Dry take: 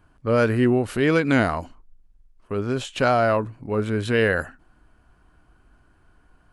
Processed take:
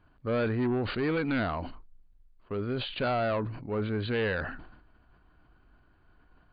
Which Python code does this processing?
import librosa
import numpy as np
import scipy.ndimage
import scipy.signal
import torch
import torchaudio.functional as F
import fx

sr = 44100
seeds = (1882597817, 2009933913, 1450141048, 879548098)

y = 10.0 ** (-18.0 / 20.0) * np.tanh(x / 10.0 ** (-18.0 / 20.0))
y = fx.brickwall_lowpass(y, sr, high_hz=4800.0)
y = fx.sustainer(y, sr, db_per_s=61.0)
y = F.gain(torch.from_numpy(y), -5.5).numpy()